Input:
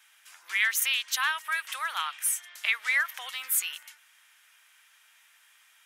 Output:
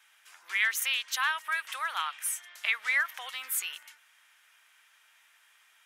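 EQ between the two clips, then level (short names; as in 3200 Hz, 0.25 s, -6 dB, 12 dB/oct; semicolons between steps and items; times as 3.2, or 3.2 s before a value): tilt -1.5 dB/oct; 0.0 dB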